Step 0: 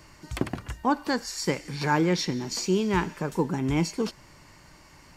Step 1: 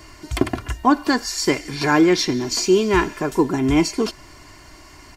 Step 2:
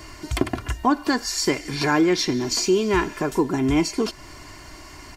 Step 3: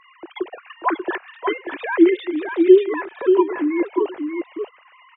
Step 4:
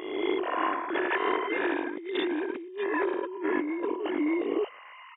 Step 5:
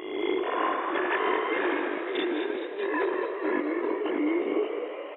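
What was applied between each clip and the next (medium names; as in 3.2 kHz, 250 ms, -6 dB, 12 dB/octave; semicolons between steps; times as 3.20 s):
comb 2.9 ms, depth 62%; trim +7 dB
compression 1.5:1, threshold -29 dBFS, peak gain reduction 7 dB; trim +2.5 dB
formants replaced by sine waves; delay 587 ms -5.5 dB; trim +2 dB
reverse spectral sustain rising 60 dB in 1.22 s; compressor with a negative ratio -24 dBFS, ratio -1; trim -7 dB
frequency-shifting echo 212 ms, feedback 62%, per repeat +68 Hz, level -8.5 dB; reverberation RT60 1.8 s, pre-delay 80 ms, DRR 10.5 dB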